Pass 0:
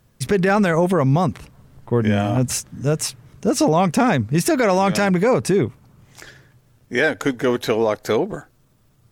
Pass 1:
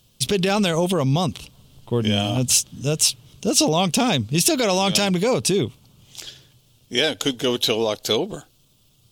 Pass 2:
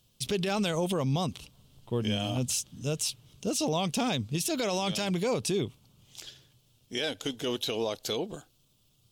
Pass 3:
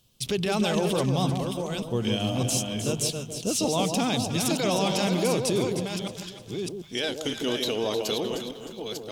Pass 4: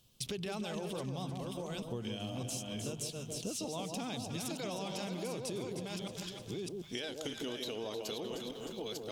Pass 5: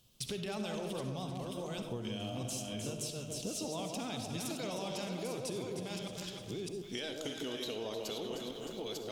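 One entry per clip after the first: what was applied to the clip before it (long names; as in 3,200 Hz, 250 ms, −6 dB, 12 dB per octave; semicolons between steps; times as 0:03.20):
high shelf with overshoot 2,400 Hz +9 dB, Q 3; level −3 dB
brickwall limiter −11.5 dBFS, peak gain reduction 9 dB; level −8.5 dB
delay that plays each chunk backwards 608 ms, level −5.5 dB; mains-hum notches 50/100/150 Hz; delay that swaps between a low-pass and a high-pass 154 ms, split 950 Hz, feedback 60%, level −5 dB; level +2.5 dB
downward compressor 6 to 1, threshold −34 dBFS, peak gain reduction 13 dB; level −3 dB
soft clipping −24 dBFS, distortion −33 dB; convolution reverb RT60 0.55 s, pre-delay 25 ms, DRR 7.5 dB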